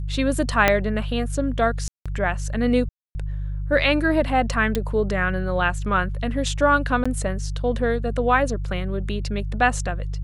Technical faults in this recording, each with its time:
hum 50 Hz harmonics 3 -27 dBFS
0.68 s: pop -2 dBFS
1.88–2.06 s: dropout 176 ms
2.89–3.15 s: dropout 260 ms
4.75 s: pop -10 dBFS
7.04–7.05 s: dropout 15 ms

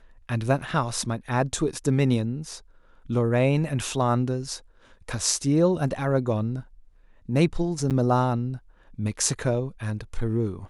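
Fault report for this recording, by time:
7.90–7.91 s: dropout 8 ms

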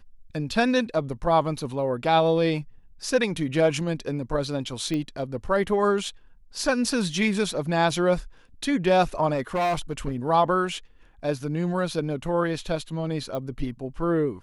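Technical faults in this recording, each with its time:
4.94 s: pop -17 dBFS
9.33–10.16 s: clipped -21 dBFS
13.35 s: pop -20 dBFS

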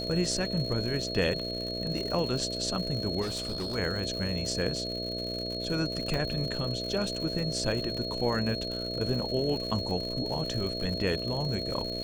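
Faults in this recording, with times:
buzz 60 Hz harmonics 11 -37 dBFS
crackle 140 per s -35 dBFS
whine 4.3 kHz -35 dBFS
3.21–3.76 s: clipped -29.5 dBFS
6.14 s: pop -18 dBFS

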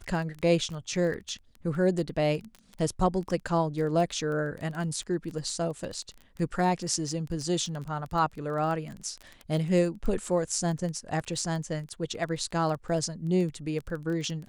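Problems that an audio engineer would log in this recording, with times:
crackle 17 per s -33 dBFS

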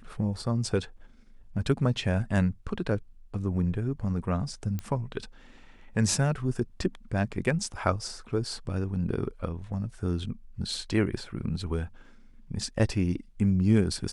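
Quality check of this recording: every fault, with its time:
4.79 s: pop -20 dBFS

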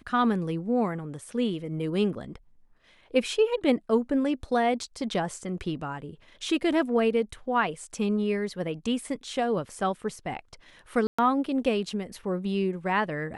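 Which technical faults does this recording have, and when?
11.07–11.19 s: dropout 115 ms

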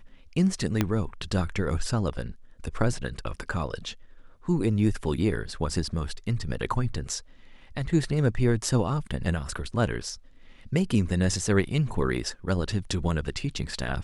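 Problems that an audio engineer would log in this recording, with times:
0.81 s: pop -9 dBFS

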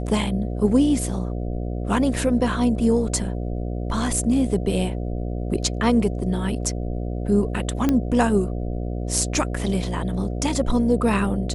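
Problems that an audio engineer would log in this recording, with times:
buzz 60 Hz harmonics 12 -27 dBFS
7.89 s: pop -8 dBFS

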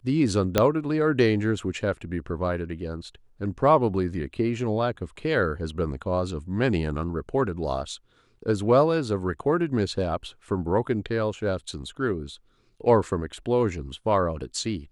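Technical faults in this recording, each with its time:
0.58 s: pop -5 dBFS

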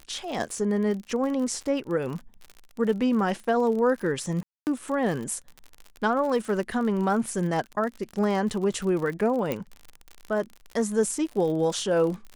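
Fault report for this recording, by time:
crackle 47 per s -32 dBFS
4.43–4.67 s: dropout 239 ms
9.52 s: pop -14 dBFS

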